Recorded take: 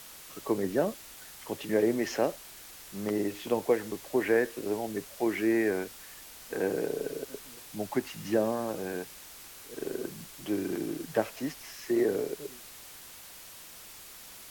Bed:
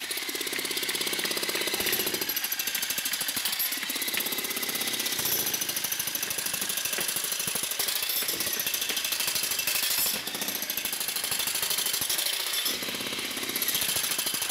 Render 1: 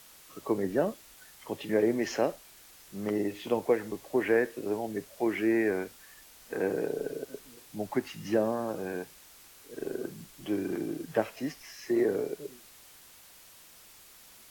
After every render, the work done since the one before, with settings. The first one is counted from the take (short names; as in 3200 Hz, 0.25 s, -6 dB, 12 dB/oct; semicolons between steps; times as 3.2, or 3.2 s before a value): noise print and reduce 6 dB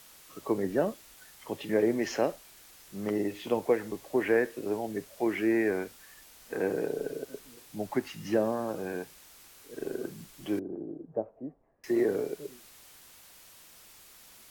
10.59–11.84 ladder low-pass 790 Hz, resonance 30%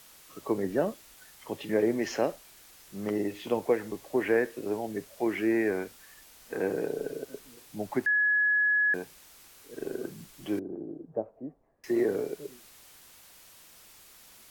8.06–8.94 bleep 1690 Hz -21.5 dBFS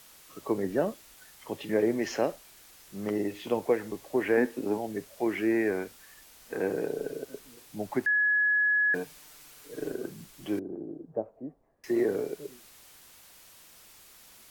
4.37–4.78 small resonant body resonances 250/840 Hz, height 10 dB; 8.93–9.92 comb 6.7 ms, depth 81%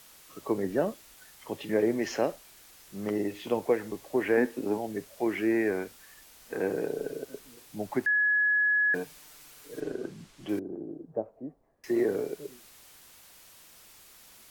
9.8–10.49 air absorption 58 m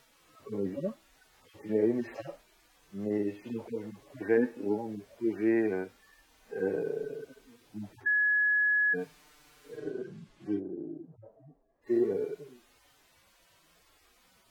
median-filter separation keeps harmonic; LPF 2700 Hz 6 dB/oct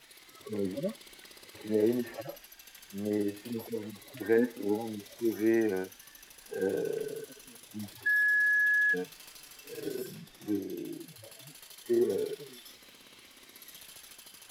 add bed -23 dB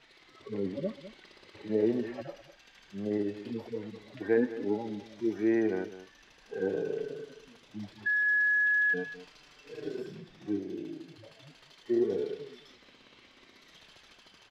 air absorption 160 m; outdoor echo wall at 35 m, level -14 dB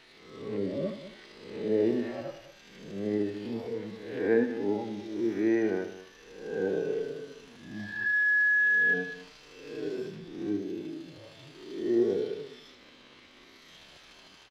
spectral swells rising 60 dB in 0.81 s; echo 77 ms -10.5 dB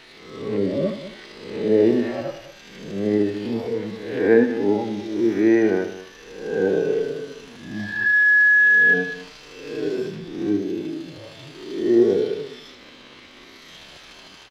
gain +9.5 dB